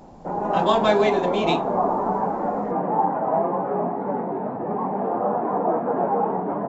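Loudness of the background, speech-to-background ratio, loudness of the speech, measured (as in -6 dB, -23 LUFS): -24.0 LUFS, 1.5 dB, -22.5 LUFS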